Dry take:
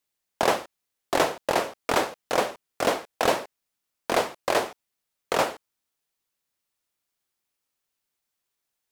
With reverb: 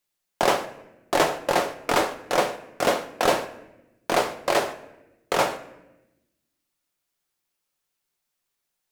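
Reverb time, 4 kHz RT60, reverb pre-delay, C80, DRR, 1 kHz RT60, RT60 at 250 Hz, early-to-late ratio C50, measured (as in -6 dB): 0.95 s, 0.65 s, 6 ms, 15.5 dB, 6.0 dB, 0.80 s, 1.5 s, 13.0 dB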